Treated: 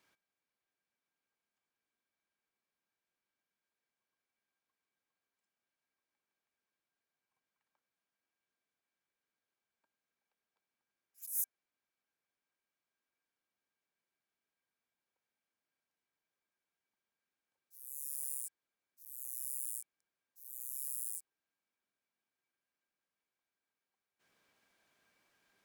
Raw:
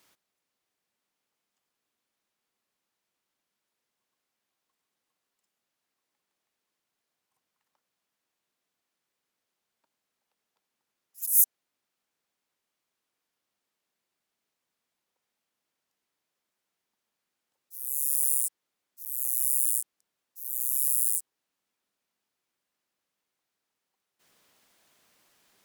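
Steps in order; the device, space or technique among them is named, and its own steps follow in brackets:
inside a helmet (high-shelf EQ 4,900 Hz −8.5 dB; hollow resonant body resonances 1,600/2,300 Hz, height 15 dB, ringing for 100 ms)
level −7.5 dB

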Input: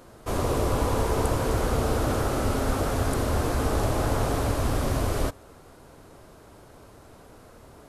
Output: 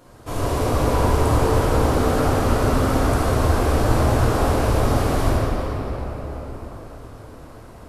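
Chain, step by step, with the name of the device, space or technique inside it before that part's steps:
cathedral (convolution reverb RT60 4.9 s, pre-delay 3 ms, DRR −8 dB)
level −2.5 dB

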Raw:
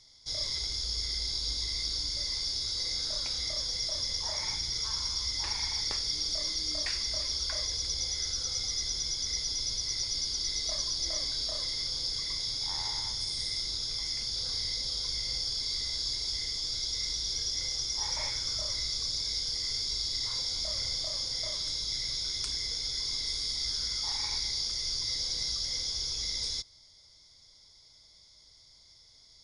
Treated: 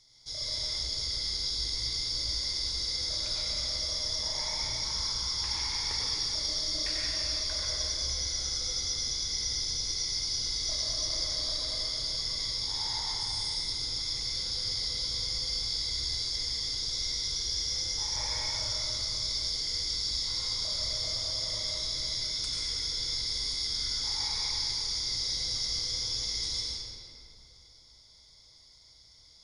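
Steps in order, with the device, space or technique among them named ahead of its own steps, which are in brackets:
stairwell (convolution reverb RT60 2.8 s, pre-delay 88 ms, DRR −4.5 dB)
high-shelf EQ 9,300 Hz +4.5 dB
level −4.5 dB

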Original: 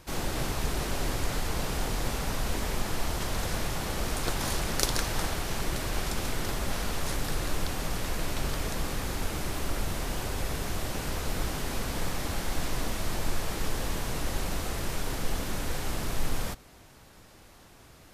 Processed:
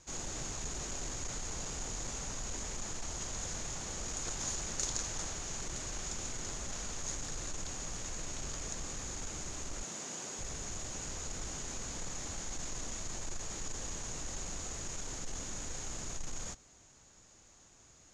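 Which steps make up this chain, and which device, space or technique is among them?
0:09.83–0:10.39: high-pass filter 160 Hz 24 dB per octave
overdriven synthesiser ladder filter (soft clipping −21.5 dBFS, distortion −18 dB; transistor ladder low-pass 7,000 Hz, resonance 85%)
level +2 dB

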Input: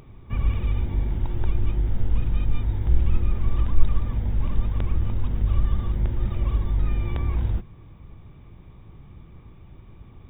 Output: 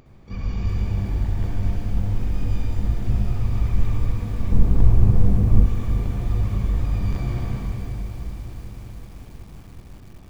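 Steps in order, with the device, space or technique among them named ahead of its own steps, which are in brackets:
shimmer-style reverb (pitch-shifted copies added +12 semitones −4 dB; convolution reverb RT60 3.1 s, pre-delay 59 ms, DRR −3 dB)
0:04.52–0:05.66: tilt shelving filter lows +8 dB, about 1,300 Hz
feedback echo at a low word length 376 ms, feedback 80%, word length 6 bits, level −13 dB
level −6.5 dB

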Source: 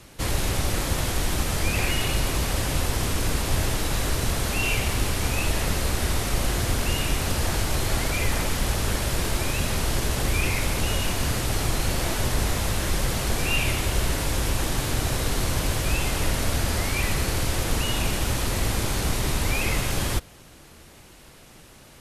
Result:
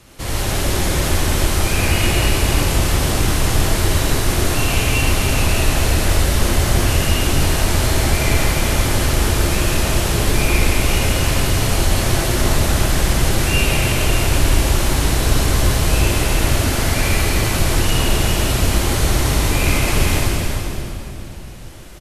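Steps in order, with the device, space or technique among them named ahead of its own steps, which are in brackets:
cave (single-tap delay 343 ms −8 dB; convolution reverb RT60 2.9 s, pre-delay 46 ms, DRR −6 dB)

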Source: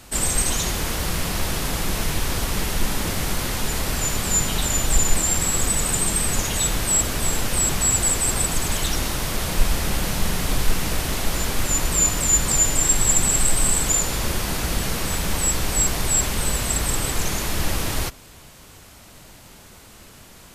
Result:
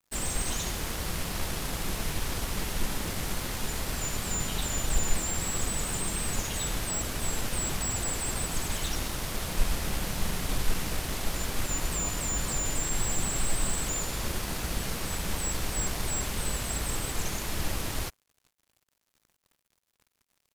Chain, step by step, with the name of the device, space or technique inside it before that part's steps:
early transistor amplifier (dead-zone distortion −38.5 dBFS; slew-rate limiting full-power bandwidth 420 Hz)
level −7 dB

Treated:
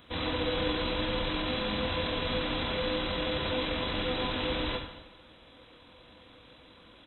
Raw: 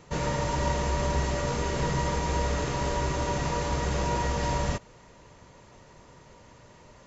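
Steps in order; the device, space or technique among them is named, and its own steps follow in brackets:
monster voice (pitch shifter −11 semitones; low-shelf EQ 180 Hz +6.5 dB; convolution reverb RT60 1.0 s, pre-delay 28 ms, DRR 4 dB)
spectral tilt +3.5 dB per octave

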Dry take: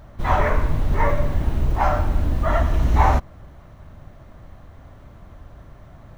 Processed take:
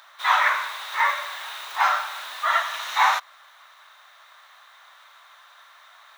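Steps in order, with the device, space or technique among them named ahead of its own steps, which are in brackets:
headphones lying on a table (high-pass filter 1,100 Hz 24 dB per octave; parametric band 3,700 Hz +11.5 dB 0.22 octaves)
level +7.5 dB

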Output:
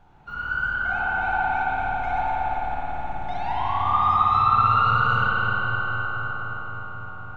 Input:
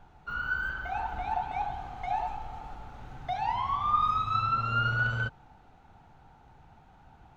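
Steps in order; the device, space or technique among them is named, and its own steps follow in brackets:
dub delay into a spring reverb (feedback echo with a low-pass in the loop 259 ms, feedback 81%, low-pass 3,200 Hz, level −4.5 dB; spring reverb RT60 3.9 s, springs 54 ms, chirp 65 ms, DRR −6 dB)
level −1 dB

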